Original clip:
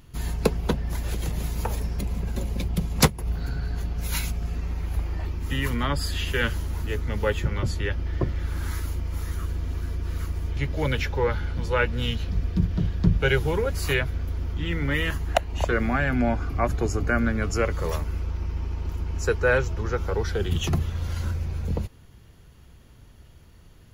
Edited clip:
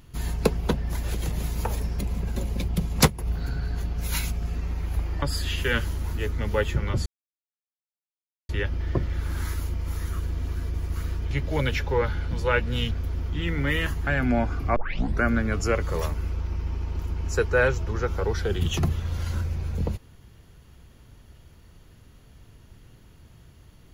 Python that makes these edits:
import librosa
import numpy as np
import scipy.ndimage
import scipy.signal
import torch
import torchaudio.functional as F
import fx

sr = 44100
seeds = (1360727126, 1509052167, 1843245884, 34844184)

y = fx.edit(x, sr, fx.cut(start_s=5.22, length_s=0.69),
    fx.insert_silence(at_s=7.75, length_s=1.43),
    fx.reverse_span(start_s=10.0, length_s=0.48),
    fx.cut(start_s=12.17, length_s=1.98),
    fx.cut(start_s=15.31, length_s=0.66),
    fx.tape_start(start_s=16.66, length_s=0.46), tone=tone)